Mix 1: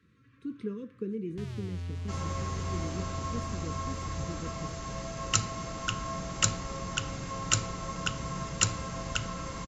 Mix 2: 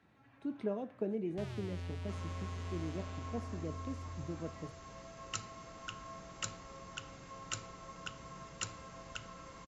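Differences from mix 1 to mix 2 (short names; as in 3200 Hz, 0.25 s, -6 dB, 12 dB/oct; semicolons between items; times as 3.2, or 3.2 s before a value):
speech: remove elliptic band-stop 500–1100 Hz; second sound -11.5 dB; master: add tone controls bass -6 dB, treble -4 dB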